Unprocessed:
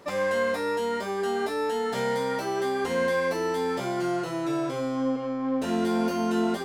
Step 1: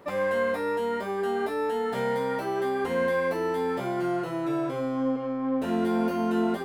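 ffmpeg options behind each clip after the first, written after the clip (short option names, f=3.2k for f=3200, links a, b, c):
-af "equalizer=f=6k:w=0.82:g=-11"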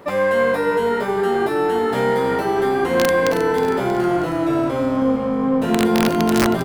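-filter_complex "[0:a]aeval=exprs='(mod(7.08*val(0)+1,2)-1)/7.08':c=same,asplit=7[a][b][c][d][e][f][g];[b]adelay=317,afreqshift=-51,volume=-10dB[h];[c]adelay=634,afreqshift=-102,volume=-15.5dB[i];[d]adelay=951,afreqshift=-153,volume=-21dB[j];[e]adelay=1268,afreqshift=-204,volume=-26.5dB[k];[f]adelay=1585,afreqshift=-255,volume=-32.1dB[l];[g]adelay=1902,afreqshift=-306,volume=-37.6dB[m];[a][h][i][j][k][l][m]amix=inputs=7:normalize=0,volume=8.5dB"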